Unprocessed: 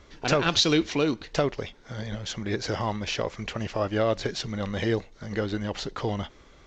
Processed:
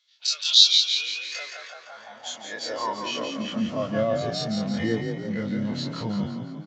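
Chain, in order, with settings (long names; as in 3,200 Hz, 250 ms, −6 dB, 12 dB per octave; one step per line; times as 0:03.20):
every bin's largest magnitude spread in time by 60 ms
noise reduction from a noise print of the clip's start 11 dB
mains-hum notches 50/100/150 Hz
in parallel at −1 dB: downward compressor, threshold −34 dBFS, peak gain reduction 18.5 dB
on the sum: notch comb filter 390 Hz
on a send: echo with shifted repeats 170 ms, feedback 58%, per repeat +33 Hz, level −6 dB
on the sum: high-pass filter sweep 3,800 Hz → 150 Hz, 0:00.78–0:03.92
one half of a high-frequency compander decoder only
level −2.5 dB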